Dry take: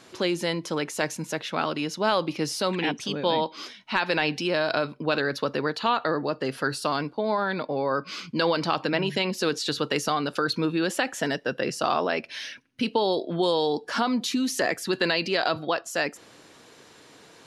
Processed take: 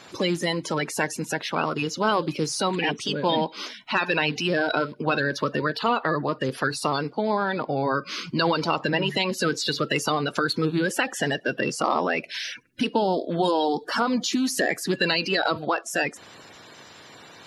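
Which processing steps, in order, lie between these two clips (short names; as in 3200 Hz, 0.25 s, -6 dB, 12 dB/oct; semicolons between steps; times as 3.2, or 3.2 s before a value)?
bin magnitudes rounded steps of 30 dB; in parallel at -1 dB: compressor, threshold -33 dBFS, peak gain reduction 14.5 dB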